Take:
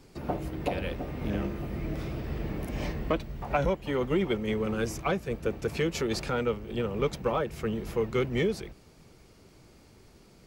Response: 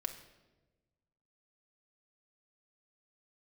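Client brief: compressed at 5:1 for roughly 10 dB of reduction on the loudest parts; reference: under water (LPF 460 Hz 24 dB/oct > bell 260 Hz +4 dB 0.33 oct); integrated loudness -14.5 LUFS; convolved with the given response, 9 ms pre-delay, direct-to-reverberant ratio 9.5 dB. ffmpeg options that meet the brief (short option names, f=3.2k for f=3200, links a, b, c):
-filter_complex "[0:a]acompressor=threshold=-34dB:ratio=5,asplit=2[a][b];[1:a]atrim=start_sample=2205,adelay=9[c];[b][c]afir=irnorm=-1:irlink=0,volume=-9.5dB[d];[a][d]amix=inputs=2:normalize=0,lowpass=f=460:w=0.5412,lowpass=f=460:w=1.3066,equalizer=f=260:t=o:w=0.33:g=4,volume=24.5dB"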